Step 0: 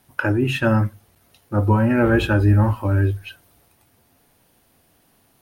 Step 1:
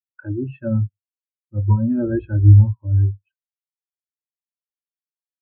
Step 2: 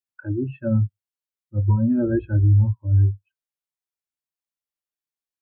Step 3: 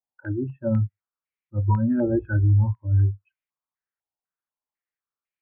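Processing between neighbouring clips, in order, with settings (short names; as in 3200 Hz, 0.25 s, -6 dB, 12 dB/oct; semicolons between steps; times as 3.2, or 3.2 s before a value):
spectral expander 2.5:1; gain +4.5 dB
limiter -10.5 dBFS, peak gain reduction 8.5 dB
stepped low-pass 4 Hz 820–2300 Hz; gain -2.5 dB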